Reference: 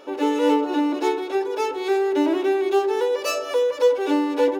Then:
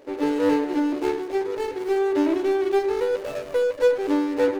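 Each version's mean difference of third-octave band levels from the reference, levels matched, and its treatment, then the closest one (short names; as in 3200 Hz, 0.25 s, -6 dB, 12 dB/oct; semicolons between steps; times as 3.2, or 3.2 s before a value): 4.0 dB: median filter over 41 samples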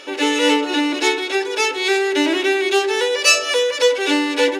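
5.0 dB: band shelf 4100 Hz +14 dB 3 oct; gain +1.5 dB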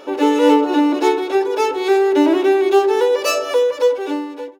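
2.0 dB: ending faded out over 1.18 s; gain +6.5 dB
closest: third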